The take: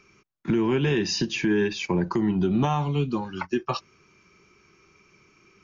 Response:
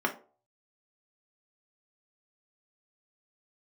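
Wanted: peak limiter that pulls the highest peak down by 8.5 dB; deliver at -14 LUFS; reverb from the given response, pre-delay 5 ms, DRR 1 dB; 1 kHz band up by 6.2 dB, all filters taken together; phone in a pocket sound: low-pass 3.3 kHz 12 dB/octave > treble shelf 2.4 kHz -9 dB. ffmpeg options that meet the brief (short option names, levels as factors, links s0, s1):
-filter_complex "[0:a]equalizer=f=1000:t=o:g=9,alimiter=limit=0.15:level=0:latency=1,asplit=2[s0][s1];[1:a]atrim=start_sample=2205,adelay=5[s2];[s1][s2]afir=irnorm=-1:irlink=0,volume=0.282[s3];[s0][s3]amix=inputs=2:normalize=0,lowpass=3300,highshelf=f=2400:g=-9,volume=3.35"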